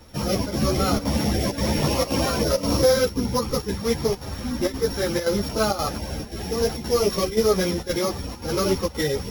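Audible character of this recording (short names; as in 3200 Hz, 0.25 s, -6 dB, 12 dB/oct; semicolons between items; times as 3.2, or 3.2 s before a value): a buzz of ramps at a fixed pitch in blocks of 8 samples; chopped level 1.9 Hz, depth 65%, duty 85%; a shimmering, thickened sound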